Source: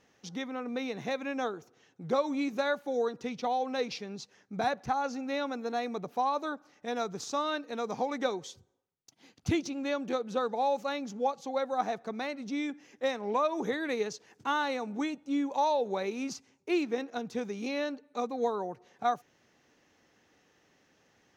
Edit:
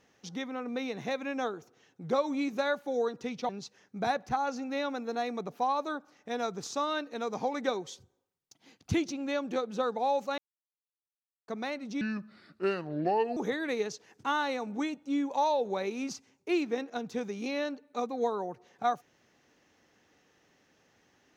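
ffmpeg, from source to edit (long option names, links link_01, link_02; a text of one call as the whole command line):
ffmpeg -i in.wav -filter_complex "[0:a]asplit=6[link_01][link_02][link_03][link_04][link_05][link_06];[link_01]atrim=end=3.492[link_07];[link_02]atrim=start=4.058:end=10.95,asetpts=PTS-STARTPTS,afade=type=out:start_time=6.888:duration=0.004:curve=hsin[link_08];[link_03]atrim=start=10.95:end=12.05,asetpts=PTS-STARTPTS,volume=0[link_09];[link_04]atrim=start=12.05:end=12.584,asetpts=PTS-STARTPTS,afade=type=in:duration=0.004:curve=hsin[link_10];[link_05]atrim=start=12.58:end=13.57,asetpts=PTS-STARTPTS,asetrate=32193,aresample=44100[link_11];[link_06]atrim=start=13.566[link_12];[link_08][link_09][link_10]concat=n=3:v=0:a=1[link_13];[link_07][link_13]acrossfade=duration=0.004:curve1=hsin:curve2=hsin[link_14];[link_14][link_11]acrossfade=duration=0.004:curve1=hsin:curve2=hsin[link_15];[link_15][link_12]acrossfade=duration=0.004:curve1=hsin:curve2=hsin" out.wav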